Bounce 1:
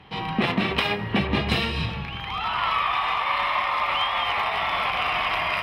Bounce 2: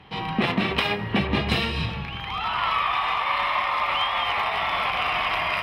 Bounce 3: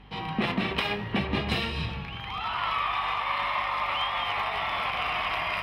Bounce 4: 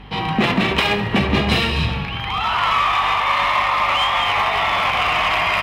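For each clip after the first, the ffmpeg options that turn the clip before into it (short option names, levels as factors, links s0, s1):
-af anull
-af "flanger=delay=9.5:depth=7.8:regen=88:speed=0.69:shape=triangular,aeval=exprs='val(0)+0.00282*(sin(2*PI*50*n/s)+sin(2*PI*2*50*n/s)/2+sin(2*PI*3*50*n/s)/3+sin(2*PI*4*50*n/s)/4+sin(2*PI*5*50*n/s)/5)':c=same"
-filter_complex "[0:a]asplit=2[s0][s1];[s1]volume=25.1,asoftclip=hard,volume=0.0398,volume=0.596[s2];[s0][s2]amix=inputs=2:normalize=0,aecho=1:1:69|138|207|276|345|414:0.188|0.111|0.0656|0.0387|0.0228|0.0135,volume=2.37"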